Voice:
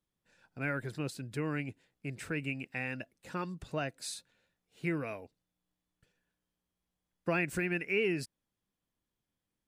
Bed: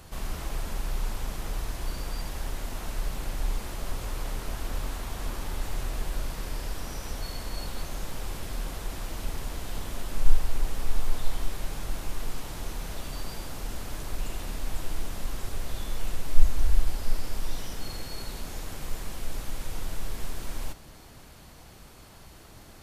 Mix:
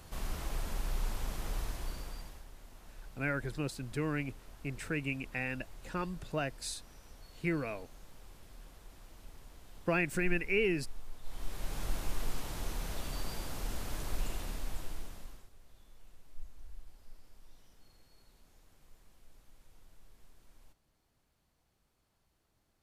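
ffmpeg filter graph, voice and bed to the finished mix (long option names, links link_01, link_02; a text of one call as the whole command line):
ffmpeg -i stem1.wav -i stem2.wav -filter_complex "[0:a]adelay=2600,volume=0.5dB[link_01];[1:a]volume=12dB,afade=type=out:start_time=1.61:duration=0.84:silence=0.177828,afade=type=in:start_time=11.22:duration=0.62:silence=0.149624,afade=type=out:start_time=14.18:duration=1.31:silence=0.0630957[link_02];[link_01][link_02]amix=inputs=2:normalize=0" out.wav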